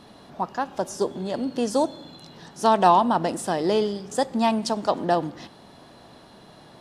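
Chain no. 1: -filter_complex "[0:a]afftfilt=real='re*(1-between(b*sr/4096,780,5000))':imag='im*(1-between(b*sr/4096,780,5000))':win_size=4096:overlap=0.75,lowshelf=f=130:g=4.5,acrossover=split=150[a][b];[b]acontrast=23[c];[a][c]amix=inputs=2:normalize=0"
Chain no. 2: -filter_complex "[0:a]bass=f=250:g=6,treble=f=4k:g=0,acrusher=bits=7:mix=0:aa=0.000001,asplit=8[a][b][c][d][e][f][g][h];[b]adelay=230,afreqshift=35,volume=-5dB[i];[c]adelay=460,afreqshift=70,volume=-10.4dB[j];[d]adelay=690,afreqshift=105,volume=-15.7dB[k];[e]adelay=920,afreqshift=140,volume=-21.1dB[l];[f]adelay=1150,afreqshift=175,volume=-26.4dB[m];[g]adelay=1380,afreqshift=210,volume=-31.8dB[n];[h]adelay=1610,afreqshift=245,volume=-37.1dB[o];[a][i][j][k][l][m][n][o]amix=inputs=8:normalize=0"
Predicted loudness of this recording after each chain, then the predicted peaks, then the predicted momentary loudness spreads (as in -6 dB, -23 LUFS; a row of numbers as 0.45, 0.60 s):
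-20.5, -22.0 LUFS; -4.5, -2.5 dBFS; 13, 15 LU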